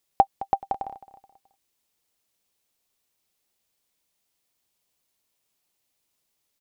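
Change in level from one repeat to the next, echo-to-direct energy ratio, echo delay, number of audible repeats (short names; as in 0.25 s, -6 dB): -8.5 dB, -15.5 dB, 0.214 s, 3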